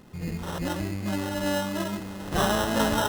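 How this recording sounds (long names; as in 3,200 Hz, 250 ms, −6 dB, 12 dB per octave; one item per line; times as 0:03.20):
aliases and images of a low sample rate 2,300 Hz, jitter 0%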